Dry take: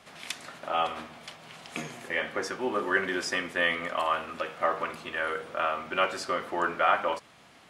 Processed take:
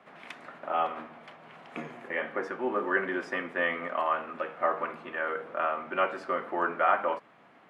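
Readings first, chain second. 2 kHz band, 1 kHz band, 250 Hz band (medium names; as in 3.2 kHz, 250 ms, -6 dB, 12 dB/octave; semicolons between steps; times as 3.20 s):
-2.5 dB, -0.5 dB, -0.5 dB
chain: three-band isolator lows -17 dB, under 150 Hz, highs -22 dB, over 2.3 kHz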